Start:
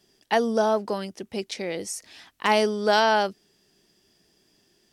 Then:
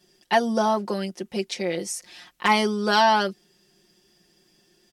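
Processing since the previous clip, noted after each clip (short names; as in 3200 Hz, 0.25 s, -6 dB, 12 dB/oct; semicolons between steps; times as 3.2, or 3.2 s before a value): comb 5.6 ms, depth 81%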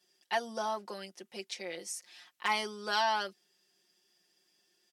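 HPF 860 Hz 6 dB/oct; gain -8.5 dB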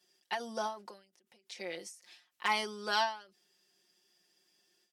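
ending taper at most 140 dB/s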